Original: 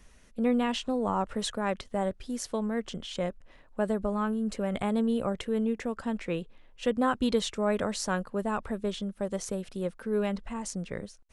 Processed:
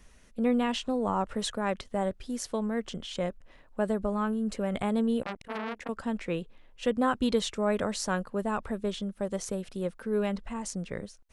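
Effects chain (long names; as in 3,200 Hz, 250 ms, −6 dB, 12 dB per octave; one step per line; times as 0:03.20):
0:05.22–0:05.89: saturating transformer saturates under 2,100 Hz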